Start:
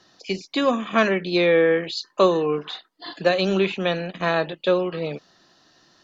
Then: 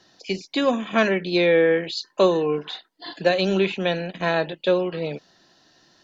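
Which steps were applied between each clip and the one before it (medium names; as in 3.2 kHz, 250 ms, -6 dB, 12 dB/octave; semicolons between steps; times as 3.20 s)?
band-stop 1.2 kHz, Q 5.3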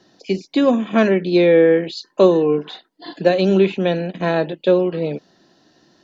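peaking EQ 270 Hz +10 dB 2.7 oct; trim -2 dB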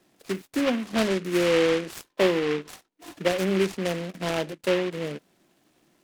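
delay time shaken by noise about 1.9 kHz, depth 0.11 ms; trim -9 dB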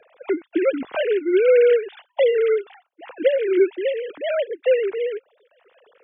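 formants replaced by sine waves; three bands compressed up and down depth 40%; trim +6 dB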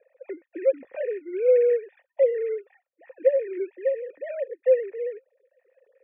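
cascade formant filter e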